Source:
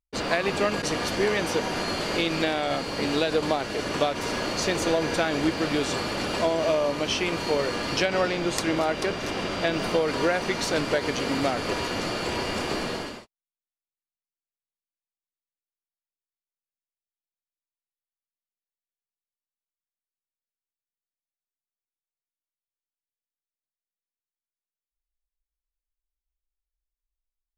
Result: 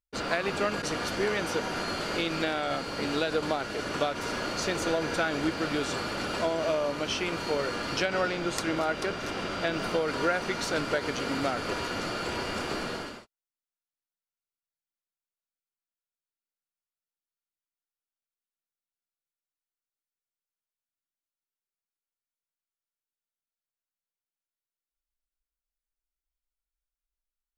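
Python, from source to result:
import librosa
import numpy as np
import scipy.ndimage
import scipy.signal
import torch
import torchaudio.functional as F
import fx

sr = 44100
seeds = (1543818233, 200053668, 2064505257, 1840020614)

y = fx.peak_eq(x, sr, hz=1400.0, db=8.5, octaves=0.2)
y = y * 10.0 ** (-4.5 / 20.0)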